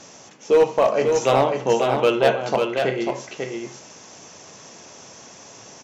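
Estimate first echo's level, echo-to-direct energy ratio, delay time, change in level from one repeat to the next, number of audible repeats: -5.0 dB, -5.0 dB, 0.544 s, no steady repeat, 1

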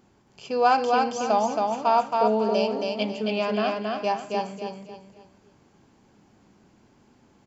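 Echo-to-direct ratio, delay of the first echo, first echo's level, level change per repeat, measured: -2.5 dB, 0.273 s, -3.0 dB, -9.5 dB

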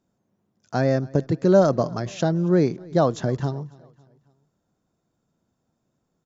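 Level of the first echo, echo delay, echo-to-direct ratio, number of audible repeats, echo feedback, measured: -24.0 dB, 0.276 s, -23.0 dB, 2, 49%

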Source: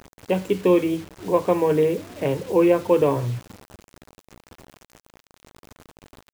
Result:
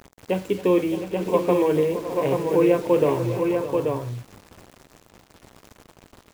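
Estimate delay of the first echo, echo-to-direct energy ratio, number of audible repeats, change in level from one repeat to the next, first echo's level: 46 ms, -2.5 dB, 6, no steady repeat, -19.5 dB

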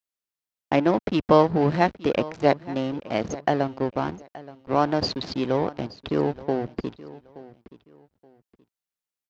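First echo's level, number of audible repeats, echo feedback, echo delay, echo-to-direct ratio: -18.5 dB, 2, 26%, 0.875 s, -18.0 dB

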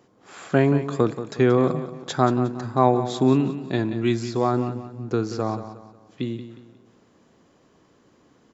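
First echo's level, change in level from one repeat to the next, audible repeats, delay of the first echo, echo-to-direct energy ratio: -12.0 dB, -8.5 dB, 3, 0.18 s, -11.5 dB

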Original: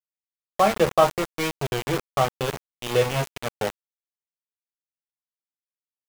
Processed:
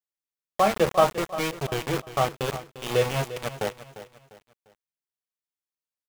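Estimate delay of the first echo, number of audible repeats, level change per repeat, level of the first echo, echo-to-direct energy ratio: 0.349 s, 3, -9.0 dB, -14.0 dB, -13.5 dB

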